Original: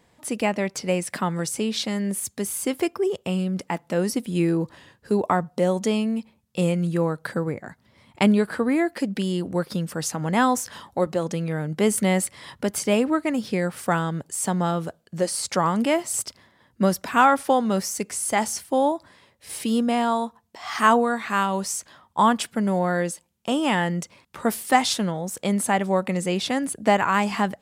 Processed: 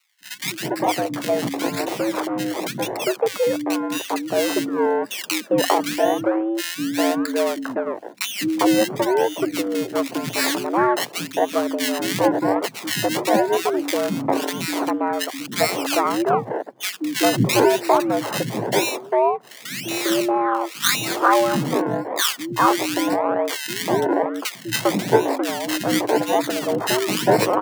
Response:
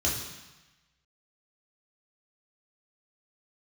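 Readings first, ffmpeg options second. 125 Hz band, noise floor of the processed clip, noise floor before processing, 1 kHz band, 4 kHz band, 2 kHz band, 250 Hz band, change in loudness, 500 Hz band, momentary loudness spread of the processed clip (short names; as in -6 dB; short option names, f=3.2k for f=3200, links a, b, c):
-3.5 dB, -38 dBFS, -63 dBFS, +2.0 dB, +6.5 dB, +3.0 dB, +1.0 dB, +2.5 dB, +4.5 dB, 7 LU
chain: -filter_complex "[0:a]acrusher=samples=27:mix=1:aa=0.000001:lfo=1:lforange=27:lforate=0.94,acrossover=split=180|1500[a][b][c];[a]adelay=200[d];[b]adelay=400[e];[d][e][c]amix=inputs=3:normalize=0,afreqshift=110,volume=4dB"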